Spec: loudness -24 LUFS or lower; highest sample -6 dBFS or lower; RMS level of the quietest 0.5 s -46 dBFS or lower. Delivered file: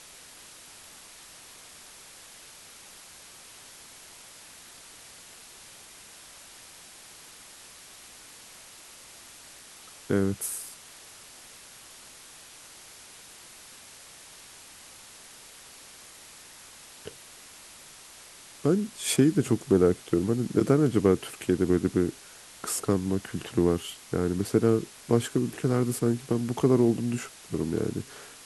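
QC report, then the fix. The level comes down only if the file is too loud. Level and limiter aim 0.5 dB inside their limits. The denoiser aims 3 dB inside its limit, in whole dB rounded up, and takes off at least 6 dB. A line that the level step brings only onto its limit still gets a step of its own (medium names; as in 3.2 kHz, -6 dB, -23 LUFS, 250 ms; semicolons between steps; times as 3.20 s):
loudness -26.5 LUFS: pass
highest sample -8.0 dBFS: pass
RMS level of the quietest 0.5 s -49 dBFS: pass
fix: none needed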